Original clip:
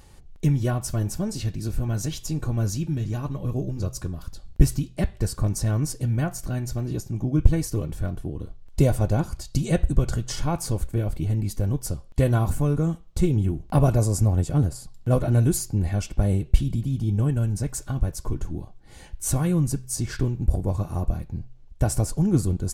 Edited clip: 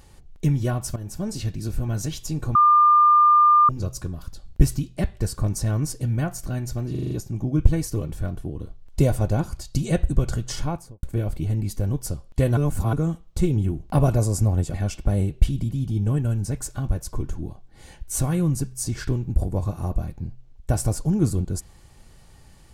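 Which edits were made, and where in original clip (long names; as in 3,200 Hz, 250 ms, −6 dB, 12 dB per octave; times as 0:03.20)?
0:00.96–0:01.29: fade in, from −14.5 dB
0:02.55–0:03.69: beep over 1,200 Hz −11.5 dBFS
0:06.91: stutter 0.04 s, 6 plays
0:10.37–0:10.83: fade out and dull
0:12.37–0:12.73: reverse
0:14.54–0:15.86: remove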